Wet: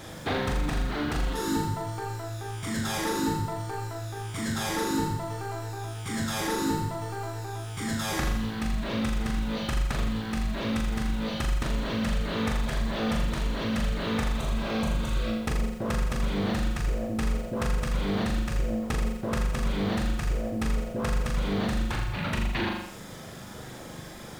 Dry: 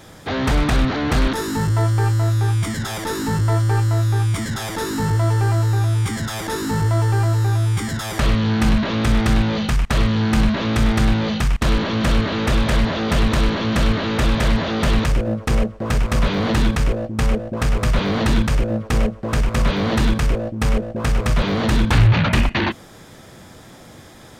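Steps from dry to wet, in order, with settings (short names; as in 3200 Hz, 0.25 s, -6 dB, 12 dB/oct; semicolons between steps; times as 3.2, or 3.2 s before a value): spectral repair 14.37–15.29, 1100–5800 Hz before; compressor 10:1, threshold -27 dBFS, peak gain reduction 18.5 dB; reverb removal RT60 0.81 s; flutter echo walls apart 6.9 m, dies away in 0.68 s; lo-fi delay 86 ms, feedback 55%, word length 8-bit, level -9 dB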